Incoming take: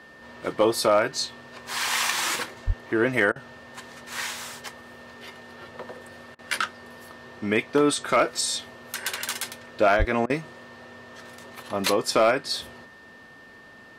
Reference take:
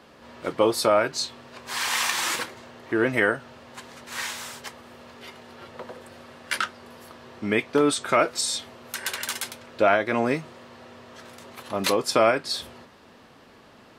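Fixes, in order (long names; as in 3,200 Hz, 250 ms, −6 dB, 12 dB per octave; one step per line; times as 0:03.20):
clipped peaks rebuilt −10 dBFS
notch filter 1,800 Hz, Q 30
0:02.66–0:02.78: high-pass filter 140 Hz 24 dB per octave
0:09.98–0:10.10: high-pass filter 140 Hz 24 dB per octave
repair the gap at 0:03.32/0:06.35/0:10.26, 37 ms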